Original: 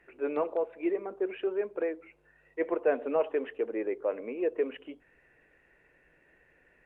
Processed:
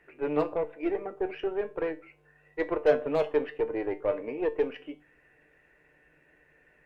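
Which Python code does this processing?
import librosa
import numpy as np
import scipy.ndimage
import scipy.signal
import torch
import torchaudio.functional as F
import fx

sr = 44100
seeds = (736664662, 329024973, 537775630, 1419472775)

y = fx.cheby_harmonics(x, sr, harmonics=(6,), levels_db=(-23,), full_scale_db=-16.5)
y = np.clip(y, -10.0 ** (-18.5 / 20.0), 10.0 ** (-18.5 / 20.0))
y = fx.comb_fb(y, sr, f0_hz=150.0, decay_s=0.26, harmonics='all', damping=0.0, mix_pct=70)
y = y * 10.0 ** (8.5 / 20.0)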